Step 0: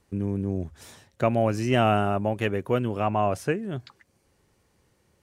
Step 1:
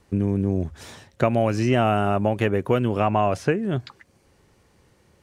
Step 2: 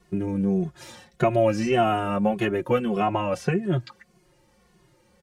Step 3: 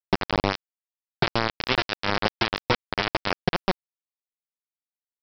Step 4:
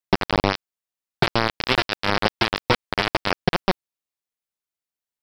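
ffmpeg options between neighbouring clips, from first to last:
ffmpeg -i in.wav -filter_complex "[0:a]highshelf=frequency=8000:gain=-6.5,acrossover=split=1900|6700[link_01][link_02][link_03];[link_01]acompressor=threshold=-24dB:ratio=4[link_04];[link_02]acompressor=threshold=-42dB:ratio=4[link_05];[link_03]acompressor=threshold=-59dB:ratio=4[link_06];[link_04][link_05][link_06]amix=inputs=3:normalize=0,volume=7.5dB" out.wav
ffmpeg -i in.wav -filter_complex "[0:a]aecho=1:1:5.6:0.78,asplit=2[link_01][link_02];[link_02]adelay=2.3,afreqshift=-1.7[link_03];[link_01][link_03]amix=inputs=2:normalize=1" out.wav
ffmpeg -i in.wav -af "acompressor=threshold=-26dB:ratio=20,aresample=11025,acrusher=bits=3:mix=0:aa=0.000001,aresample=44100,volume=7dB" out.wav
ffmpeg -i in.wav -af "asoftclip=type=hard:threshold=-9dB,volume=3.5dB" out.wav

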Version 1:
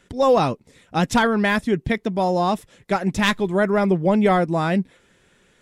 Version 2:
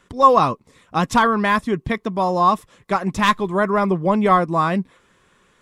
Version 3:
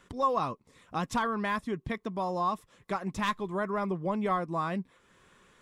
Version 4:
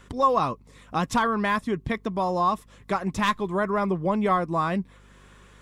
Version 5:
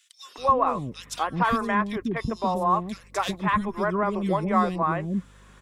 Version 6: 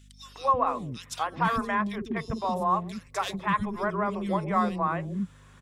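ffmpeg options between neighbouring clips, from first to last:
ffmpeg -i in.wav -af "equalizer=frequency=1100:width=4.4:gain=14.5,volume=-1dB" out.wav
ffmpeg -i in.wav -af "acompressor=threshold=-43dB:ratio=1.5,volume=-3dB" out.wav
ffmpeg -i in.wav -af "aeval=exprs='val(0)+0.00112*(sin(2*PI*50*n/s)+sin(2*PI*2*50*n/s)/2+sin(2*PI*3*50*n/s)/3+sin(2*PI*4*50*n/s)/4+sin(2*PI*5*50*n/s)/5)':channel_layout=same,volume=6.5dB" out.wav
ffmpeg -i in.wav -filter_complex "[0:a]acrossover=split=400|2600[link_01][link_02][link_03];[link_02]adelay=250[link_04];[link_01]adelay=380[link_05];[link_05][link_04][link_03]amix=inputs=3:normalize=0,volume=1dB" out.wav
ffmpeg -i in.wav -filter_complex "[0:a]acrossover=split=360[link_01][link_02];[link_01]adelay=50[link_03];[link_03][link_02]amix=inputs=2:normalize=0,aeval=exprs='val(0)+0.00316*(sin(2*PI*50*n/s)+sin(2*PI*2*50*n/s)/2+sin(2*PI*3*50*n/s)/3+sin(2*PI*4*50*n/s)/4+sin(2*PI*5*50*n/s)/5)':channel_layout=same,volume=-2.5dB" out.wav

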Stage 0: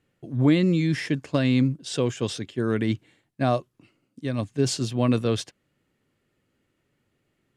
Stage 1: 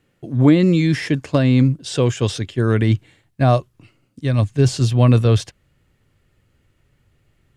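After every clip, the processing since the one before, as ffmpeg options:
ffmpeg -i in.wav -filter_complex "[0:a]asubboost=boost=6.5:cutoff=96,acrossover=split=1200[link_01][link_02];[link_02]alimiter=level_in=3.5dB:limit=-24dB:level=0:latency=1:release=12,volume=-3.5dB[link_03];[link_01][link_03]amix=inputs=2:normalize=0,volume=7.5dB" out.wav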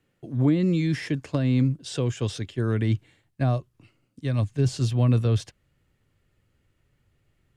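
ffmpeg -i in.wav -filter_complex "[0:a]acrossover=split=320[link_01][link_02];[link_02]acompressor=threshold=-24dB:ratio=2.5[link_03];[link_01][link_03]amix=inputs=2:normalize=0,volume=-7dB" out.wav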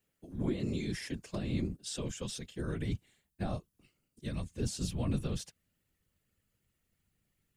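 ffmpeg -i in.wav -af "aemphasis=mode=production:type=75kf,afftfilt=real='hypot(re,im)*cos(2*PI*random(0))':imag='hypot(re,im)*sin(2*PI*random(1))':win_size=512:overlap=0.75,volume=-6.5dB" out.wav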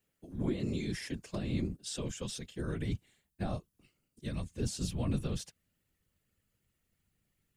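ffmpeg -i in.wav -af anull out.wav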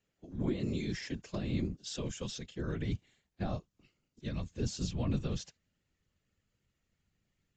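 ffmpeg -i in.wav -ar 16000 -c:a aac -b:a 64k out.aac

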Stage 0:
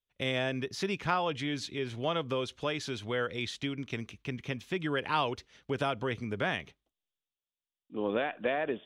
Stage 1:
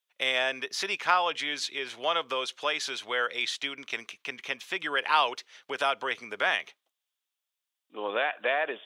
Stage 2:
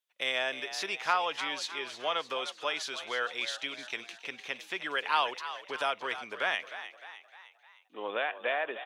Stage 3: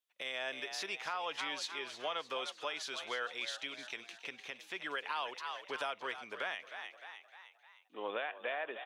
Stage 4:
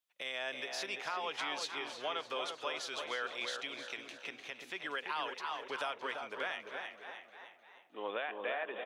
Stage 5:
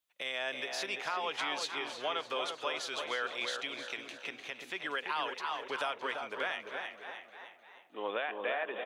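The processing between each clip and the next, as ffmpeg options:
ffmpeg -i in.wav -af "highpass=750,volume=7.5dB" out.wav
ffmpeg -i in.wav -filter_complex "[0:a]asplit=6[link_01][link_02][link_03][link_04][link_05][link_06];[link_02]adelay=306,afreqshift=67,volume=-12dB[link_07];[link_03]adelay=612,afreqshift=134,volume=-17.7dB[link_08];[link_04]adelay=918,afreqshift=201,volume=-23.4dB[link_09];[link_05]adelay=1224,afreqshift=268,volume=-29dB[link_10];[link_06]adelay=1530,afreqshift=335,volume=-34.7dB[link_11];[link_01][link_07][link_08][link_09][link_10][link_11]amix=inputs=6:normalize=0,volume=-4dB" out.wav
ffmpeg -i in.wav -af "alimiter=limit=-24dB:level=0:latency=1:release=293,volume=-3dB" out.wav
ffmpeg -i in.wav -filter_complex "[0:a]asplit=2[link_01][link_02];[link_02]adelay=340,lowpass=frequency=1200:poles=1,volume=-4dB,asplit=2[link_03][link_04];[link_04]adelay=340,lowpass=frequency=1200:poles=1,volume=0.45,asplit=2[link_05][link_06];[link_06]adelay=340,lowpass=frequency=1200:poles=1,volume=0.45,asplit=2[link_07][link_08];[link_08]adelay=340,lowpass=frequency=1200:poles=1,volume=0.45,asplit=2[link_09][link_10];[link_10]adelay=340,lowpass=frequency=1200:poles=1,volume=0.45,asplit=2[link_11][link_12];[link_12]adelay=340,lowpass=frequency=1200:poles=1,volume=0.45[link_13];[link_01][link_03][link_05][link_07][link_09][link_11][link_13]amix=inputs=7:normalize=0" out.wav
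ffmpeg -i in.wav -af "equalizer=frequency=5400:width_type=o:width=0.26:gain=-2.5,volume=3dB" out.wav

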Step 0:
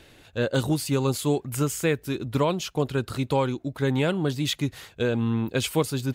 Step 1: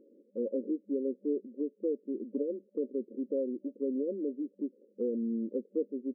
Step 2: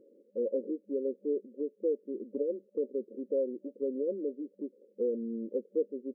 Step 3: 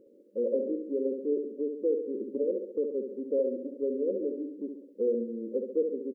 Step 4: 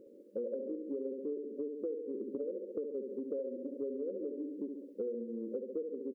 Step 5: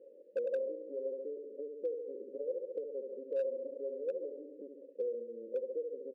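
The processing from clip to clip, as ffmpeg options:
ffmpeg -i in.wav -filter_complex "[0:a]afftfilt=real='re*between(b*sr/4096,200,580)':imag='im*between(b*sr/4096,200,580)':win_size=4096:overlap=0.75,asplit=2[link_01][link_02];[link_02]acompressor=threshold=-35dB:ratio=6,volume=0dB[link_03];[link_01][link_03]amix=inputs=2:normalize=0,volume=-8.5dB" out.wav
ffmpeg -i in.wav -af "equalizer=frequency=125:width_type=o:width=1:gain=10,equalizer=frequency=250:width_type=o:width=1:gain=-6,equalizer=frequency=500:width_type=o:width=1:gain=6,volume=-2dB" out.wav
ffmpeg -i in.wav -af "aecho=1:1:68|136|204|272|340|408|476:0.501|0.266|0.141|0.0746|0.0395|0.021|0.0111,volume=2dB" out.wav
ffmpeg -i in.wav -af "acompressor=threshold=-38dB:ratio=6,volume=2dB" out.wav
ffmpeg -i in.wav -filter_complex "[0:a]asplit=3[link_01][link_02][link_03];[link_01]bandpass=frequency=530:width_type=q:width=8,volume=0dB[link_04];[link_02]bandpass=frequency=1840:width_type=q:width=8,volume=-6dB[link_05];[link_03]bandpass=frequency=2480:width_type=q:width=8,volume=-9dB[link_06];[link_04][link_05][link_06]amix=inputs=3:normalize=0,volume=34.5dB,asoftclip=hard,volume=-34.5dB,volume=6.5dB" out.wav

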